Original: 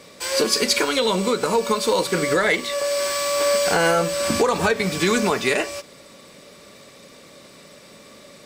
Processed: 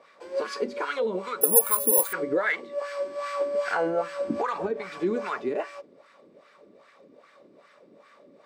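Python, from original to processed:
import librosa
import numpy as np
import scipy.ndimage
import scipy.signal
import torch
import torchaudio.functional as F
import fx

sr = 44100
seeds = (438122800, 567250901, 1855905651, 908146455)

y = fx.wah_lfo(x, sr, hz=2.5, low_hz=290.0, high_hz=1600.0, q=2.3)
y = fx.resample_bad(y, sr, factor=4, down='filtered', up='zero_stuff', at=(1.41, 2.13))
y = y * 10.0 ** (-1.0 / 20.0)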